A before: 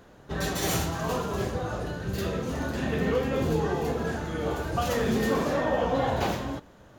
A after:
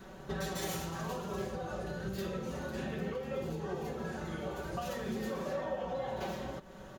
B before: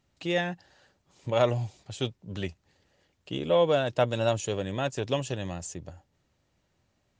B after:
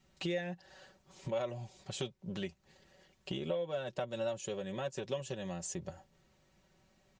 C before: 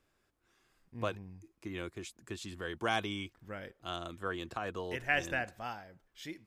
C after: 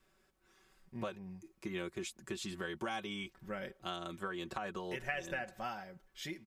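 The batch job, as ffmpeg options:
-af "adynamicequalizer=threshold=0.00891:dfrequency=520:dqfactor=5.9:tfrequency=520:tqfactor=5.9:attack=5:release=100:ratio=0.375:range=2.5:mode=boostabove:tftype=bell,acompressor=threshold=-40dB:ratio=5,aecho=1:1:5.3:0.66,volume=2dB"

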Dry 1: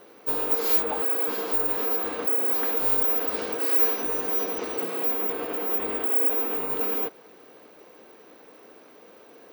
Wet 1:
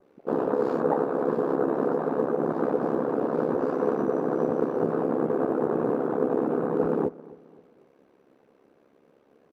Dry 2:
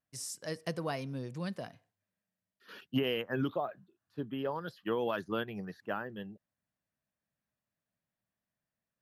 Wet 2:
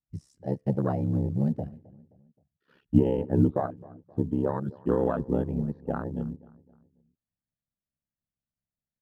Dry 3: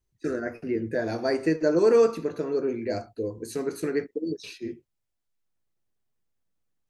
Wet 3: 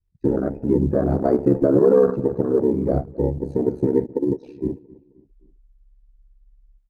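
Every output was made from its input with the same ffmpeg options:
-filter_complex "[0:a]aemphasis=mode=reproduction:type=riaa,aeval=exprs='val(0)*sin(2*PI*34*n/s)':c=same,adynamicequalizer=threshold=0.00178:dfrequency=3300:dqfactor=1.2:tfrequency=3300:tqfactor=1.2:attack=5:release=100:ratio=0.375:range=2:mode=cutabove:tftype=bell,acrusher=bits=7:mode=log:mix=0:aa=0.000001,afwtdn=0.0158,asplit=2[a][b];[b]adelay=263,lowpass=f=2.5k:p=1,volume=-21.5dB,asplit=2[c][d];[d]adelay=263,lowpass=f=2.5k:p=1,volume=0.45,asplit=2[e][f];[f]adelay=263,lowpass=f=2.5k:p=1,volume=0.45[g];[c][e][g]amix=inputs=3:normalize=0[h];[a][h]amix=inputs=2:normalize=0,aresample=32000,aresample=44100,alimiter=level_in=12dB:limit=-1dB:release=50:level=0:latency=1,volume=-5dB"

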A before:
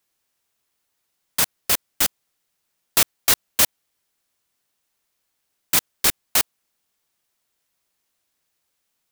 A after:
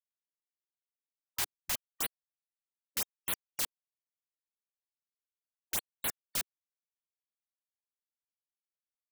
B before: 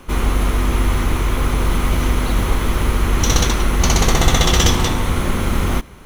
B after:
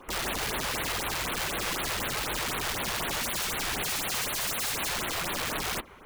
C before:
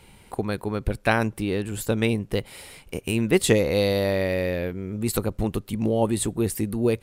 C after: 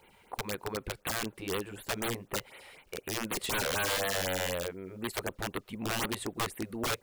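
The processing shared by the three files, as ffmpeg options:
-af "bass=f=250:g=-14,treble=f=4k:g=-13,aeval=exprs='(mod(12.6*val(0)+1,2)-1)/12.6':c=same,acrusher=bits=10:mix=0:aa=0.000001,afftfilt=real='re*(1-between(b*sr/1024,210*pow(6600/210,0.5+0.5*sin(2*PI*4*pts/sr))/1.41,210*pow(6600/210,0.5+0.5*sin(2*PI*4*pts/sr))*1.41))':imag='im*(1-between(b*sr/1024,210*pow(6600/210,0.5+0.5*sin(2*PI*4*pts/sr))/1.41,210*pow(6600/210,0.5+0.5*sin(2*PI*4*pts/sr))*1.41))':win_size=1024:overlap=0.75,volume=-3.5dB"

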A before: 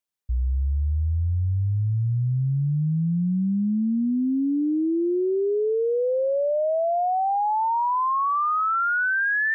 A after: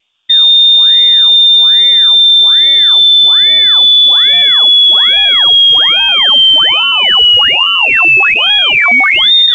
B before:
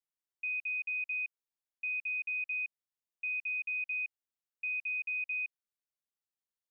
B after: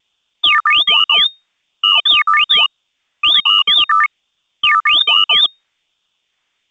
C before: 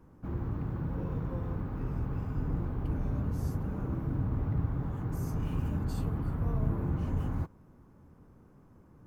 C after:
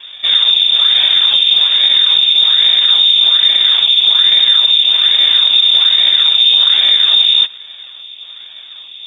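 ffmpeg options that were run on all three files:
-af "acrusher=samples=18:mix=1:aa=0.000001:lfo=1:lforange=18:lforate=1.2,aeval=exprs='0.133*(cos(1*acos(clip(val(0)/0.133,-1,1)))-cos(1*PI/2))+0.00473*(cos(3*acos(clip(val(0)/0.133,-1,1)))-cos(3*PI/2))+0.000841*(cos(5*acos(clip(val(0)/0.133,-1,1)))-cos(5*PI/2))':c=same,lowpass=f=3.1k:t=q:w=0.5098,lowpass=f=3.1k:t=q:w=0.6013,lowpass=f=3.1k:t=q:w=0.9,lowpass=f=3.1k:t=q:w=2.563,afreqshift=-3700,alimiter=level_in=26dB:limit=-1dB:release=50:level=0:latency=1,volume=-1dB" -ar 16000 -c:a pcm_alaw

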